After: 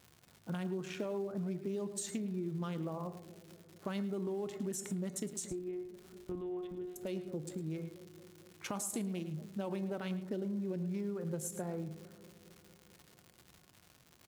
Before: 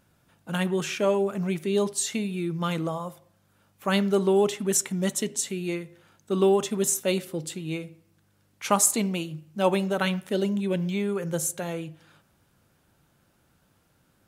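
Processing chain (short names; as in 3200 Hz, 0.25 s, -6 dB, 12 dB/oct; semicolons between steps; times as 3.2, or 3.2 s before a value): Wiener smoothing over 15 samples; in parallel at -8.5 dB: short-mantissa float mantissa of 2-bit; 5.51–6.96 on the sum: monotone LPC vocoder at 8 kHz 180 Hz; crackle 190/s -35 dBFS; resonator 360 Hz, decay 0.28 s, harmonics all, mix 60%; analogue delay 0.225 s, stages 1024, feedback 69%, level -21 dB; limiter -22 dBFS, peak gain reduction 12 dB; low shelf 360 Hz +6 dB; on a send: echo 0.108 s -14.5 dB; on the sum: compressor, threshold -32 dBFS, peak gain reduction 11 dB; HPF 42 Hz; gain -3 dB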